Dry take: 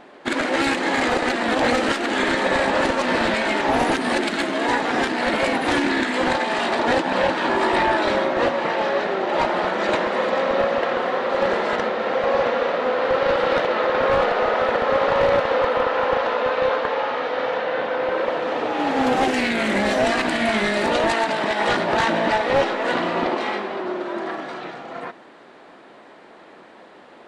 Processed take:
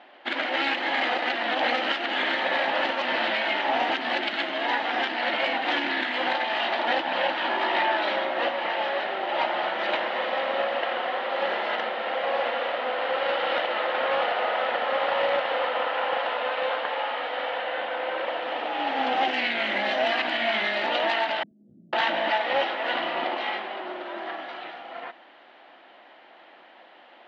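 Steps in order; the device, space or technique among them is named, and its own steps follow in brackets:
0:21.43–0:21.93: inverse Chebyshev low-pass filter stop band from 850 Hz, stop band 70 dB
phone earpiece (loudspeaker in its box 380–4,400 Hz, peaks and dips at 430 Hz −9 dB, 760 Hz +4 dB, 1,100 Hz −3 dB, 2,000 Hz +3 dB, 3,000 Hz +8 dB)
level −5 dB

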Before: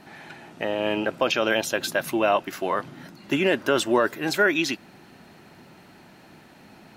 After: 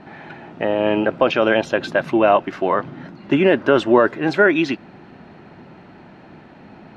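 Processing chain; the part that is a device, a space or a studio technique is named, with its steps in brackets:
phone in a pocket (low-pass filter 3,700 Hz 12 dB per octave; high-shelf EQ 2,000 Hz −9 dB)
level +8 dB

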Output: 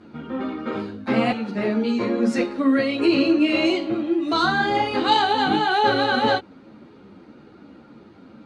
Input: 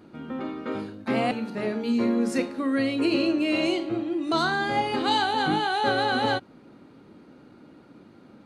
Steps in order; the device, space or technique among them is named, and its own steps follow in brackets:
string-machine ensemble chorus (string-ensemble chorus; low-pass filter 6,200 Hz 12 dB per octave)
level +7.5 dB

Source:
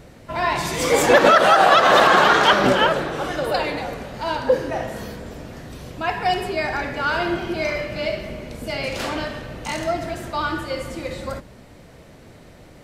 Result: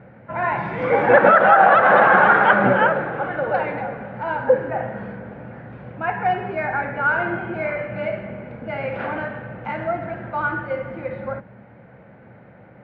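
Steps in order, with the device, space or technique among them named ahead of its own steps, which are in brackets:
bass cabinet (loudspeaker in its box 88–2,300 Hz, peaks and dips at 120 Hz +10 dB, 200 Hz +10 dB, 530 Hz +7 dB, 820 Hz +9 dB, 1,500 Hz +10 dB, 2,200 Hz +4 dB)
level −5.5 dB

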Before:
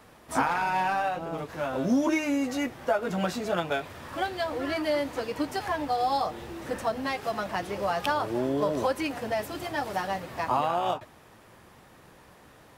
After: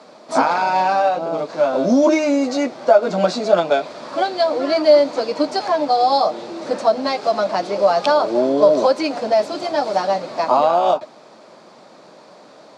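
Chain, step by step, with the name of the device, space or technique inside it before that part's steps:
television speaker (loudspeaker in its box 190–7,200 Hz, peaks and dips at 610 Hz +9 dB, 1,800 Hz −8 dB, 2,900 Hz −6 dB, 4,400 Hz +8 dB)
level +8.5 dB

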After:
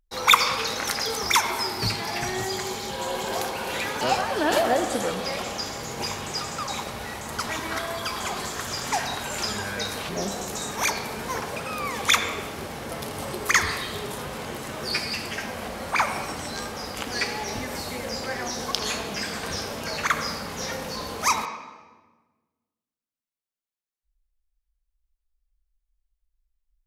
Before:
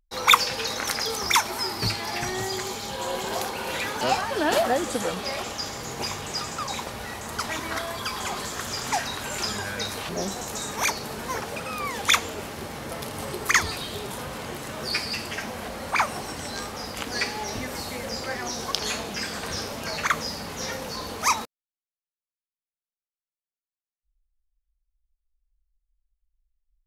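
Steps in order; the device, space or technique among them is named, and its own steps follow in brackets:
filtered reverb send (on a send: high-pass filter 160 Hz + low-pass filter 3,500 Hz + convolution reverb RT60 1.3 s, pre-delay 62 ms, DRR 7.5 dB)

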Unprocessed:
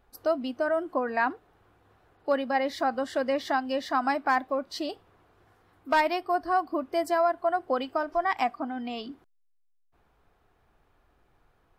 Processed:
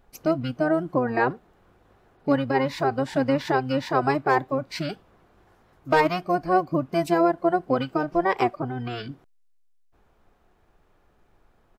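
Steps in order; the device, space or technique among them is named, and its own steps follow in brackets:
octave pedal (pitch-shifted copies added −12 semitones −1 dB)
level +1.5 dB

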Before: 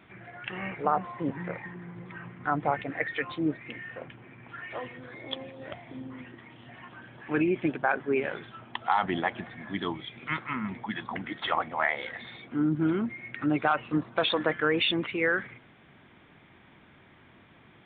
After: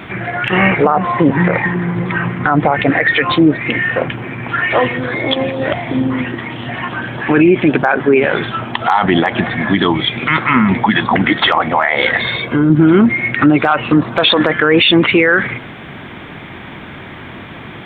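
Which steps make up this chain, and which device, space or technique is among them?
loud club master (downward compressor 2 to 1, threshold −29 dBFS, peak gain reduction 5.5 dB; hard clipping −16.5 dBFS, distortion −37 dB; boost into a limiter +26 dB)
0:12.20–0:12.70: comb filter 1.9 ms, depth 52%
level −1 dB

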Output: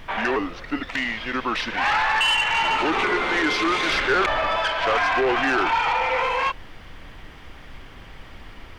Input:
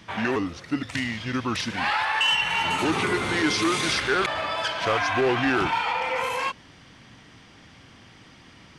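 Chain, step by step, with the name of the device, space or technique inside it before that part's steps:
aircraft cabin announcement (band-pass filter 390–3,100 Hz; soft clipping −21 dBFS, distortion −15 dB; brown noise bed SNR 17 dB)
0:03.89–0:04.59: low-shelf EQ 330 Hz +6 dB
level +6.5 dB

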